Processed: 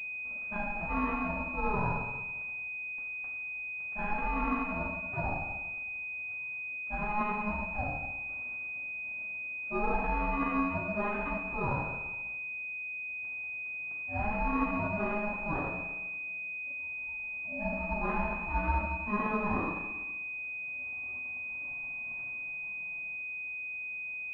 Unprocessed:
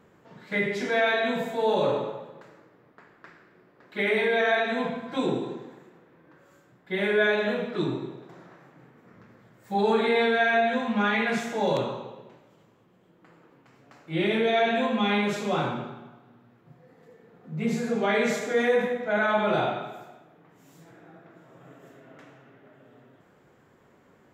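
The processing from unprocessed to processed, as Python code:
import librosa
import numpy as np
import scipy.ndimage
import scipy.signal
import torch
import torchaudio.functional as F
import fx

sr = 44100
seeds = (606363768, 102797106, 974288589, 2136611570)

y = fx.low_shelf(x, sr, hz=190.0, db=-8.0)
y = y * np.sin(2.0 * np.pi * 420.0 * np.arange(len(y)) / sr)
y = fx.pwm(y, sr, carrier_hz=2500.0)
y = F.gain(torch.from_numpy(y), -2.0).numpy()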